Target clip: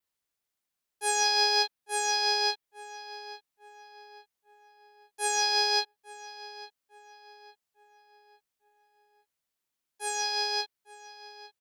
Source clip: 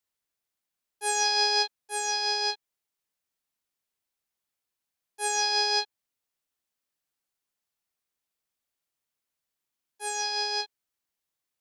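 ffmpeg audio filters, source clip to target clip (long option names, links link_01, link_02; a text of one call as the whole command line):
ffmpeg -i in.wav -filter_complex "[0:a]adynamicequalizer=threshold=0.00501:dfrequency=7000:dqfactor=2.7:tfrequency=7000:tqfactor=2.7:attack=5:release=100:ratio=0.375:range=3:mode=cutabove:tftype=bell,asplit=2[link_01][link_02];[link_02]adelay=853,lowpass=frequency=3000:poles=1,volume=-15.5dB,asplit=2[link_03][link_04];[link_04]adelay=853,lowpass=frequency=3000:poles=1,volume=0.45,asplit=2[link_05][link_06];[link_06]adelay=853,lowpass=frequency=3000:poles=1,volume=0.45,asplit=2[link_07][link_08];[link_08]adelay=853,lowpass=frequency=3000:poles=1,volume=0.45[link_09];[link_01][link_03][link_05][link_07][link_09]amix=inputs=5:normalize=0,acrusher=bits=8:mode=log:mix=0:aa=0.000001" out.wav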